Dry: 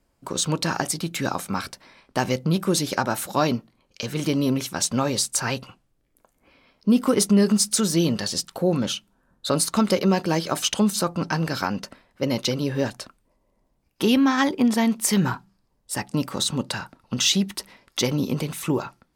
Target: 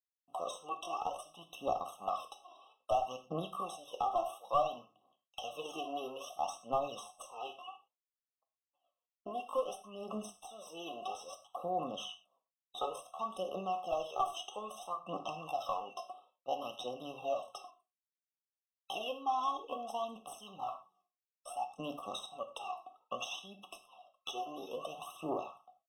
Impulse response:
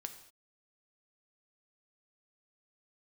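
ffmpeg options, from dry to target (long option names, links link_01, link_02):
-filter_complex "[0:a]agate=range=-50dB:threshold=-53dB:ratio=16:detection=peak,aemphasis=mode=production:type=bsi,acompressor=threshold=-27dB:ratio=12,aeval=exprs='0.376*(cos(1*acos(clip(val(0)/0.376,-1,1)))-cos(1*PI/2))+0.0531*(cos(2*acos(clip(val(0)/0.376,-1,1)))-cos(2*PI/2))+0.0473*(cos(3*acos(clip(val(0)/0.376,-1,1)))-cos(3*PI/2))+0.00376*(cos(7*acos(clip(val(0)/0.376,-1,1)))-cos(7*PI/2))+0.0188*(cos(8*acos(clip(val(0)/0.376,-1,1)))-cos(8*PI/2))':channel_layout=same,asplit=3[link_01][link_02][link_03];[link_01]bandpass=frequency=730:width_type=q:width=8,volume=0dB[link_04];[link_02]bandpass=frequency=1090:width_type=q:width=8,volume=-6dB[link_05];[link_03]bandpass=frequency=2440:width_type=q:width=8,volume=-9dB[link_06];[link_04][link_05][link_06]amix=inputs=3:normalize=0,aphaser=in_gain=1:out_gain=1:delay=3:decay=0.66:speed=0.8:type=triangular,aeval=exprs='clip(val(0),-1,0.0168)':channel_layout=same,atempo=0.74[link_07];[1:a]atrim=start_sample=2205,afade=type=out:start_time=0.27:duration=0.01,atrim=end_sample=12348,asetrate=74970,aresample=44100[link_08];[link_07][link_08]afir=irnorm=-1:irlink=0,afftfilt=real='re*eq(mod(floor(b*sr/1024/1300),2),0)':imag='im*eq(mod(floor(b*sr/1024/1300),2),0)':win_size=1024:overlap=0.75,volume=18dB"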